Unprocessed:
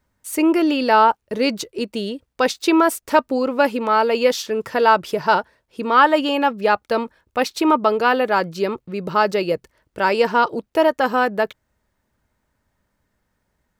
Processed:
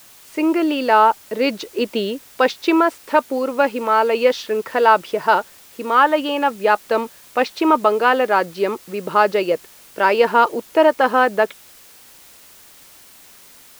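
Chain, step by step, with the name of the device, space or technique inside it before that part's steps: dictaphone (BPF 260–3600 Hz; AGC; wow and flutter 25 cents; white noise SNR 27 dB); gain -1 dB

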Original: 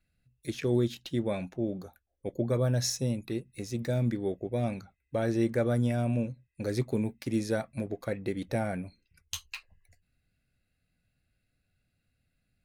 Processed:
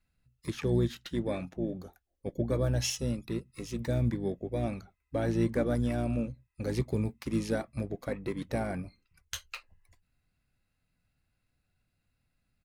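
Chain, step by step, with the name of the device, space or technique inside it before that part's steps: octave pedal (harmoniser -12 st -6 dB); gain -2 dB

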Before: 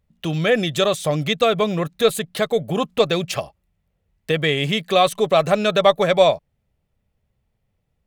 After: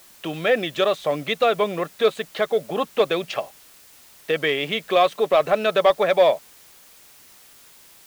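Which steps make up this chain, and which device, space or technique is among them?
tape answering machine (BPF 320–3200 Hz; soft clip -6 dBFS, distortion -22 dB; wow and flutter; white noise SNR 27 dB)

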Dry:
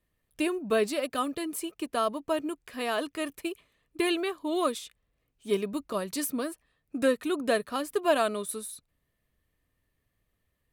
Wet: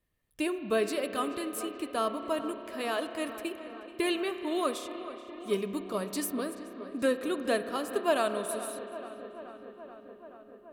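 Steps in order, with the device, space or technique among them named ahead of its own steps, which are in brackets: dub delay into a spring reverb (darkening echo 0.43 s, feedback 77%, low-pass 3200 Hz, level -14 dB; spring tank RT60 3.7 s, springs 31 ms, chirp 25 ms, DRR 9 dB); gain -2.5 dB

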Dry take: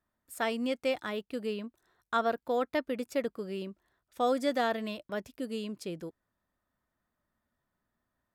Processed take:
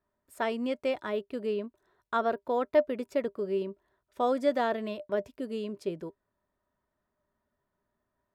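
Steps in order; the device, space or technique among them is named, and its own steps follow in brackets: inside a helmet (high shelf 4100 Hz -9.5 dB; small resonant body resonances 400/600/960 Hz, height 12 dB, ringing for 0.1 s)

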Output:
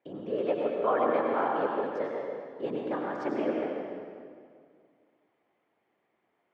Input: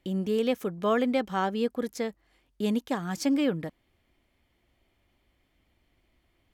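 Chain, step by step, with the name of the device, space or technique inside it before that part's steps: whispering ghost (whisperiser; HPF 470 Hz 12 dB/oct; reverb RT60 2.1 s, pre-delay 84 ms, DRR -1 dB); LPF 1400 Hz 12 dB/oct

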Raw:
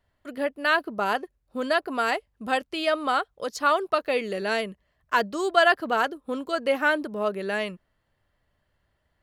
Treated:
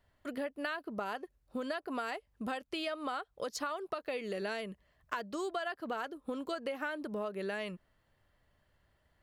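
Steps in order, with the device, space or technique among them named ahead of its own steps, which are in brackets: serial compression, peaks first (compressor 5:1, threshold -29 dBFS, peak gain reduction 14 dB; compressor 2:1, threshold -38 dBFS, peak gain reduction 7.5 dB)

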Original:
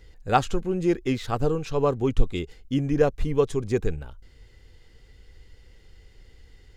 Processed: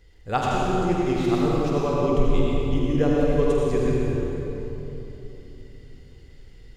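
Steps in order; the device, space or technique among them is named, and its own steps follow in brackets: tunnel (flutter echo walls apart 8.2 m, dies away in 0.32 s; reverb RT60 3.3 s, pre-delay 74 ms, DRR -4.5 dB); gain -4.5 dB

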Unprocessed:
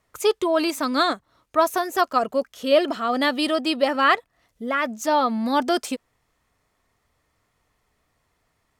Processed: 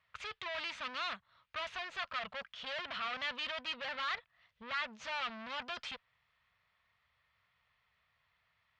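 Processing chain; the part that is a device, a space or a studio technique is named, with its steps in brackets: scooped metal amplifier (tube stage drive 34 dB, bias 0.7; speaker cabinet 97–3500 Hz, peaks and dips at 190 Hz +4 dB, 390 Hz -4 dB, 780 Hz -3 dB; passive tone stack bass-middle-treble 10-0-10); gain +7 dB

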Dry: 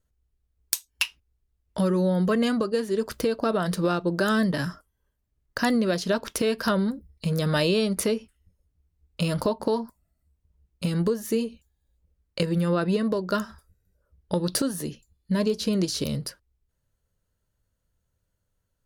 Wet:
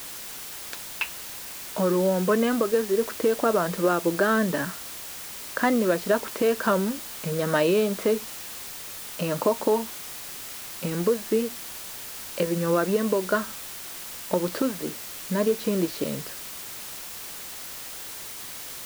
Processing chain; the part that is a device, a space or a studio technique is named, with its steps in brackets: wax cylinder (BPF 270–2000 Hz; wow and flutter; white noise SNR 11 dB); gain +3.5 dB

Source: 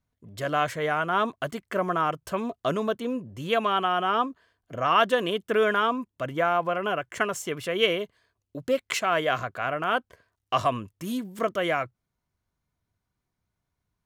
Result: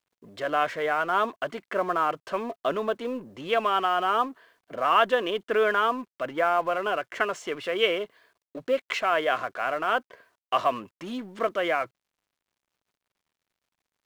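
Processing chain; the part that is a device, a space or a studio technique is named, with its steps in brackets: phone line with mismatched companding (BPF 320–3500 Hz; G.711 law mismatch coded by mu)

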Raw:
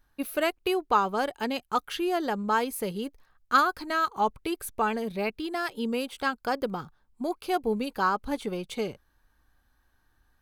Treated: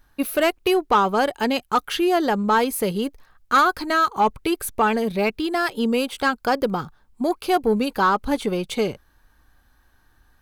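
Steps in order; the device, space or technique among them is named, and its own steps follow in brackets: saturation between pre-emphasis and de-emphasis (high shelf 2500 Hz +8.5 dB; soft clip -18 dBFS, distortion -14 dB; high shelf 2500 Hz -8.5 dB); gain +9 dB

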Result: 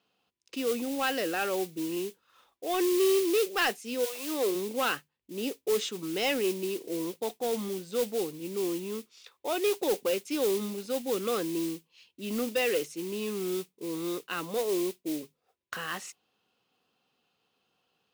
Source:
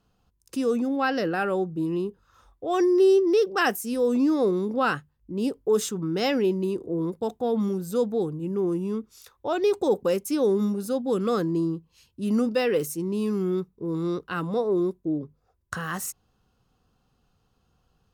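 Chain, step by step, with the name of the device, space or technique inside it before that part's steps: carbon microphone (BPF 320–3500 Hz; soft clip -16.5 dBFS, distortion -20 dB; modulation noise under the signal 19 dB); 4.04–4.54 HPF 740 Hz -> 190 Hz 24 dB/oct; resonant high shelf 1900 Hz +7 dB, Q 1.5; gain -2.5 dB

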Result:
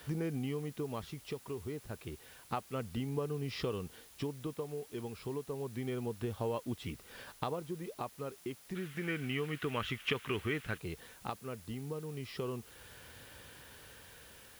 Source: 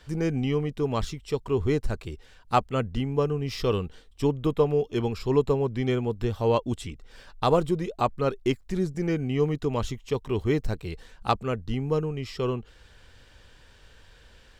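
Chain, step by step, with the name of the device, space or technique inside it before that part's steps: medium wave at night (BPF 100–3900 Hz; compressor 5:1, threshold -37 dBFS, peak gain reduction 18.5 dB; tremolo 0.3 Hz, depth 45%; whine 10000 Hz -68 dBFS; white noise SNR 19 dB); 8.75–10.78 band shelf 2000 Hz +13 dB; gain +2.5 dB

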